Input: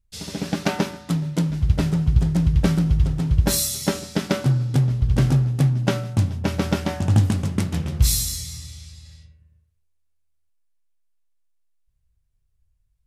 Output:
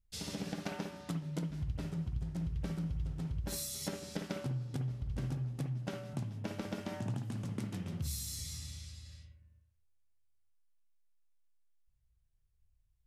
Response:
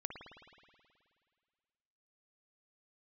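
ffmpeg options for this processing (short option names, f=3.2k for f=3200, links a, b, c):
-filter_complex "[0:a]acompressor=threshold=-30dB:ratio=5,asettb=1/sr,asplit=3[a][b][c];[a]atrim=end=6.134[d];[b]atrim=start=6.13:end=8.39,asetpts=PTS-STARTPTS,afade=t=in:d=0.004:c=qsin,afade=t=out:st=2.256:d=0.004:c=qsin,afreqshift=19[e];[c]atrim=start=8.386[f];[d][e]acrossfade=d=0.004:c1=hsin:c2=qsin[g];[g][f]acrossfade=d=0.004:c1=qsin:c2=hsin[h];[1:a]atrim=start_sample=2205,atrim=end_sample=3528,asetrate=43218,aresample=44100[i];[h][i]afir=irnorm=-1:irlink=0,volume=-3.5dB"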